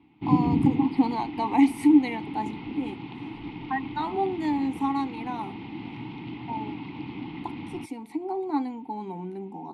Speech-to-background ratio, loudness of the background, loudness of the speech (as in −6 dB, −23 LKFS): 5.5 dB, −33.0 LKFS, −27.5 LKFS